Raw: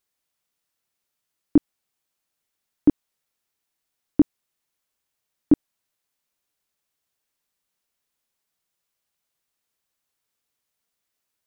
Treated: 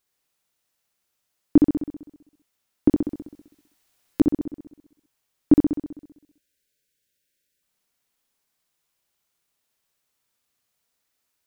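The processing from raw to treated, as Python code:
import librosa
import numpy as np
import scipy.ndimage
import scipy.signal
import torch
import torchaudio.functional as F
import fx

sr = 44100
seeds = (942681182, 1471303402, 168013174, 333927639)

p1 = fx.over_compress(x, sr, threshold_db=-20.0, ratio=-1.0, at=(2.88, 4.21))
p2 = fx.spec_erase(p1, sr, start_s=5.78, length_s=1.84, low_hz=610.0, high_hz=1400.0)
p3 = p2 + fx.room_flutter(p2, sr, wall_m=11.1, rt60_s=0.9, dry=0)
p4 = fx.buffer_glitch(p3, sr, at_s=(4.14,), block=256, repeats=9)
y = p4 * 10.0 ** (2.0 / 20.0)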